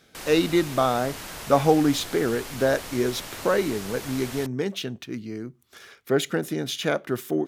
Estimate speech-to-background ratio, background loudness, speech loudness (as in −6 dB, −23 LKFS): 11.5 dB, −36.5 LKFS, −25.0 LKFS